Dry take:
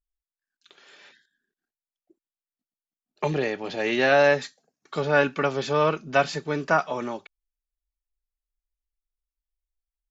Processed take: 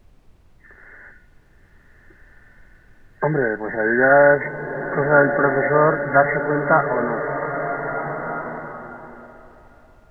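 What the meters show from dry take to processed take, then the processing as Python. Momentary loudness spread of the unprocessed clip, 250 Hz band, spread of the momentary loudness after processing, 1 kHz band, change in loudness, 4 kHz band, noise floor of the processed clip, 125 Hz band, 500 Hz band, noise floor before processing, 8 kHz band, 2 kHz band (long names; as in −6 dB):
13 LU, +6.5 dB, 15 LU, +7.0 dB, +5.0 dB, below −25 dB, −53 dBFS, +6.5 dB, +6.5 dB, below −85 dBFS, can't be measured, +7.5 dB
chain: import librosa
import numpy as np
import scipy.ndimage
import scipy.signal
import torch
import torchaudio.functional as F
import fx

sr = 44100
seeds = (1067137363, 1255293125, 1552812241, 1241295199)

y = fx.freq_compress(x, sr, knee_hz=1400.0, ratio=4.0)
y = fx.dmg_noise_colour(y, sr, seeds[0], colour='brown', level_db=-56.0)
y = fx.rev_bloom(y, sr, seeds[1], attack_ms=1610, drr_db=6.0)
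y = y * 10.0 ** (5.5 / 20.0)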